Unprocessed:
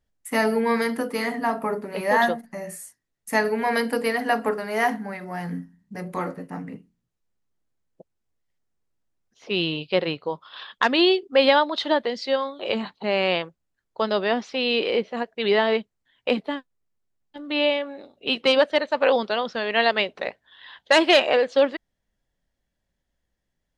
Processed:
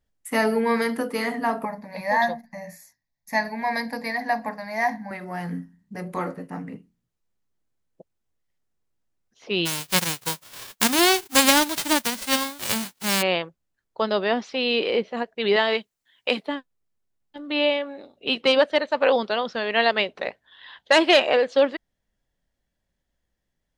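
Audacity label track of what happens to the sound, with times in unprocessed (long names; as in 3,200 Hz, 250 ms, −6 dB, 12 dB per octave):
1.650000	5.110000	phaser with its sweep stopped centre 2,000 Hz, stages 8
9.650000	13.210000	spectral envelope flattened exponent 0.1
15.560000	16.470000	spectral tilt +2.5 dB per octave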